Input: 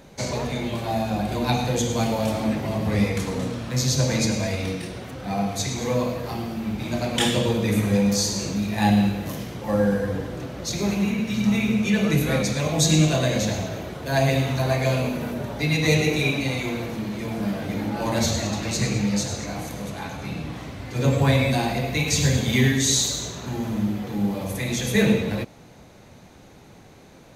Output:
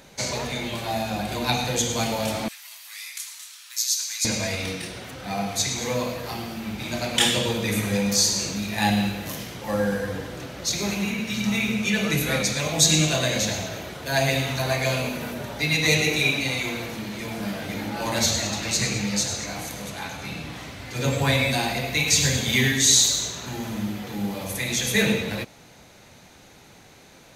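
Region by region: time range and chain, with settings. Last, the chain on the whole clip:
0:02.48–0:04.25: high-pass filter 1,000 Hz 24 dB per octave + first difference
whole clip: tilt shelving filter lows −5 dB; notch filter 1,100 Hz, Q 26

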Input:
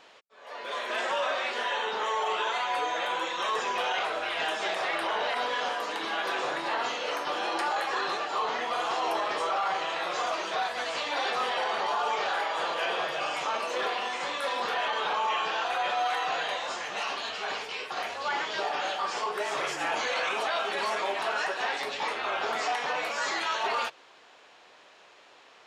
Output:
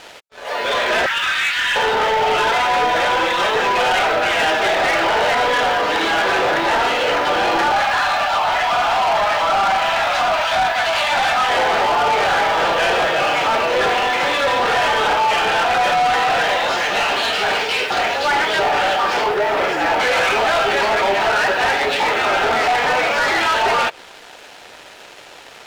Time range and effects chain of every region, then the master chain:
0:01.06–0:01.76: high-pass filter 1,400 Hz 24 dB per octave + high-frequency loss of the air 64 metres
0:07.72–0:11.50: Butterworth high-pass 580 Hz 72 dB per octave + notch filter 1,900 Hz, Q 19
0:19.34–0:20.00: high-pass filter 160 Hz 24 dB per octave + high-shelf EQ 2,400 Hz −11 dB + double-tracking delay 16 ms −13.5 dB
whole clip: notch filter 1,100 Hz, Q 6.5; treble cut that deepens with the level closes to 2,900 Hz, closed at −28.5 dBFS; leveller curve on the samples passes 3; level +7.5 dB

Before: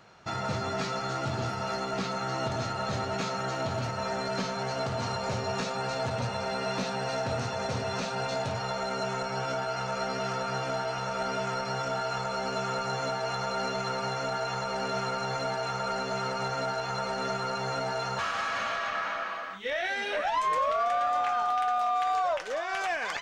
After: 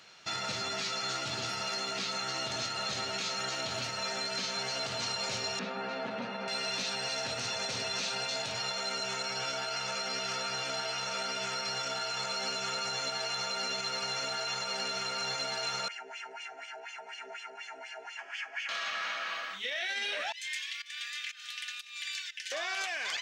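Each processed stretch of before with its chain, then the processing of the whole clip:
0:05.59–0:06.48: low-pass filter 1,800 Hz + low shelf with overshoot 140 Hz −13.5 dB, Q 3
0:15.88–0:18.69: high-shelf EQ 3,400 Hz +6.5 dB + LFO wah 4.1 Hz 450–3,400 Hz, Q 2.6 + phaser with its sweep stopped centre 790 Hz, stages 8
0:20.32–0:22.52: Chebyshev high-pass filter 1,700 Hz, order 5 + fake sidechain pumping 121 BPM, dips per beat 1, −20 dB, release 275 ms + comb filter 3.4 ms, depth 61%
whole clip: meter weighting curve D; brickwall limiter −21.5 dBFS; high-shelf EQ 6,200 Hz +11.5 dB; level −6 dB

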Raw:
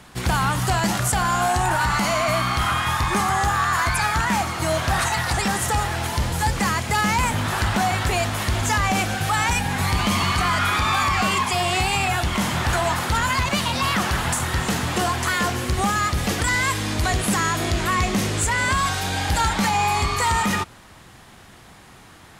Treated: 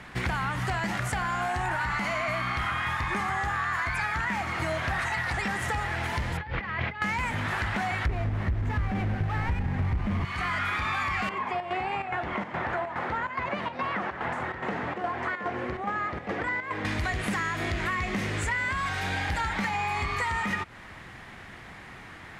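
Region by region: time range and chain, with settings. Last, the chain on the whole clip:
0:06.37–0:07.02: low-pass filter 3,600 Hz 24 dB per octave + mains-hum notches 50/100/150/200/250/300/350 Hz + compressor whose output falls as the input rises −28 dBFS, ratio −0.5
0:08.06–0:10.25: each half-wave held at its own peak + spectral tilt −3.5 dB per octave
0:11.29–0:16.85: resonant band-pass 550 Hz, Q 0.84 + square-wave tremolo 2.4 Hz, depth 65%, duty 75%
whole clip: low-pass filter 2,600 Hz 6 dB per octave; parametric band 2,000 Hz +9.5 dB 0.81 octaves; downward compressor, threshold −27 dBFS

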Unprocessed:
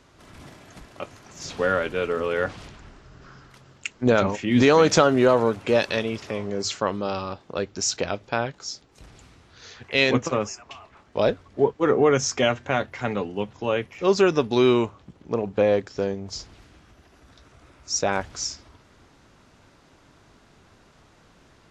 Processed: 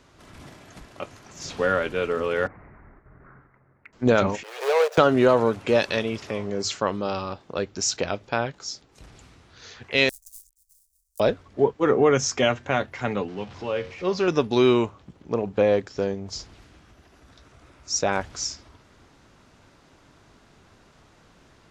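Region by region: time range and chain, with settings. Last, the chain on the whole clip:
0:02.47–0:03.93: elliptic low-pass filter 2,100 Hz + noise gate −50 dBFS, range −8 dB + downward compressor 2 to 1, threshold −47 dBFS
0:04.43–0:04.98: running median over 41 samples + Butterworth high-pass 440 Hz 72 dB per octave
0:10.09–0:11.20: gap after every zero crossing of 0.19 ms + inverse Chebyshev band-stop filter 120–2,500 Hz, stop band 60 dB
0:13.28–0:14.28: converter with a step at zero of −34 dBFS + low-pass filter 5,800 Hz 24 dB per octave + tuned comb filter 91 Hz, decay 0.36 s
whole clip: no processing

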